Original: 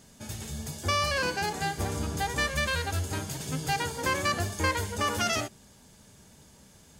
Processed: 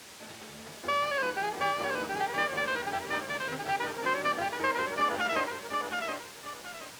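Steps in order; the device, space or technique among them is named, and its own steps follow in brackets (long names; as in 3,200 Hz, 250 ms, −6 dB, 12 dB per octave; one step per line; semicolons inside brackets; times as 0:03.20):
wax cylinder (band-pass filter 340–2,600 Hz; tape wow and flutter 25 cents; white noise bed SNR 10 dB)
high-pass filter 66 Hz
high-frequency loss of the air 51 metres
feedback echo at a low word length 725 ms, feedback 35%, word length 9 bits, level −3 dB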